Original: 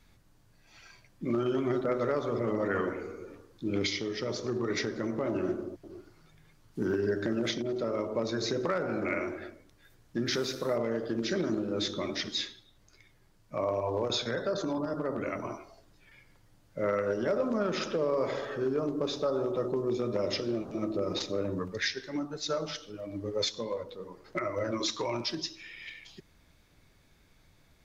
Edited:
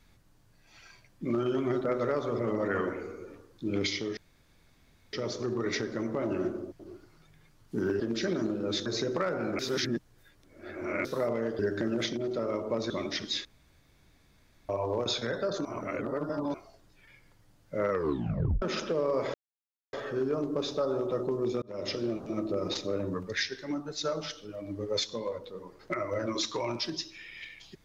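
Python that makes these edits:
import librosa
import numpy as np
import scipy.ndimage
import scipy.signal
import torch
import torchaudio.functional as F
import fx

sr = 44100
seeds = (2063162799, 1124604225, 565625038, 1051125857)

y = fx.edit(x, sr, fx.insert_room_tone(at_s=4.17, length_s=0.96),
    fx.swap(start_s=7.04, length_s=1.31, other_s=11.08, other_length_s=0.86),
    fx.reverse_span(start_s=9.08, length_s=1.46),
    fx.room_tone_fill(start_s=12.49, length_s=1.24),
    fx.reverse_span(start_s=14.69, length_s=0.89),
    fx.tape_stop(start_s=16.94, length_s=0.72),
    fx.insert_silence(at_s=18.38, length_s=0.59),
    fx.fade_in_span(start_s=20.07, length_s=0.34), tone=tone)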